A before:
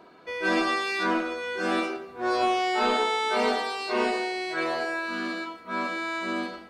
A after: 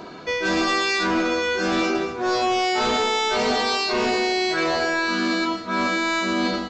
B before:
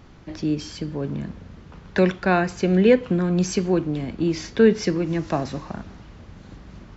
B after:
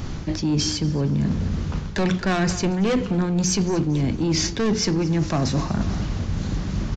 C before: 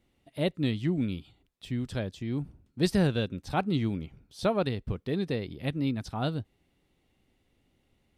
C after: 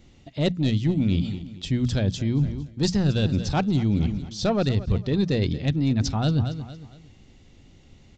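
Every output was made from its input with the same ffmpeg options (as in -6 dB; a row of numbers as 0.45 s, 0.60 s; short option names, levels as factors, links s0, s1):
-af "aresample=16000,asoftclip=type=tanh:threshold=0.1,aresample=44100,bass=f=250:g=8,treble=f=4000:g=9,acontrast=89,bandreject=f=60:t=h:w=6,bandreject=f=120:t=h:w=6,bandreject=f=180:t=h:w=6,bandreject=f=240:t=h:w=6,aecho=1:1:230|460|690:0.126|0.0453|0.0163,areverse,acompressor=threshold=0.0562:ratio=6,areverse,volume=1.88"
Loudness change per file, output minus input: +5.5 LU, -0.5 LU, +6.5 LU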